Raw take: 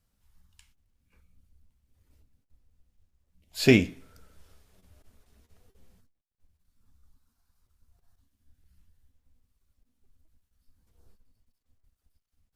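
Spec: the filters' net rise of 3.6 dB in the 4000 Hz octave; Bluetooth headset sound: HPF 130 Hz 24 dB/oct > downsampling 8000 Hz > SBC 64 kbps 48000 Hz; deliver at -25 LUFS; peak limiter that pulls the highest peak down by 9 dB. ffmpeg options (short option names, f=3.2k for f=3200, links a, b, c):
-af "equalizer=f=4k:t=o:g=4.5,alimiter=limit=-15dB:level=0:latency=1,highpass=f=130:w=0.5412,highpass=f=130:w=1.3066,aresample=8000,aresample=44100,volume=4.5dB" -ar 48000 -c:a sbc -b:a 64k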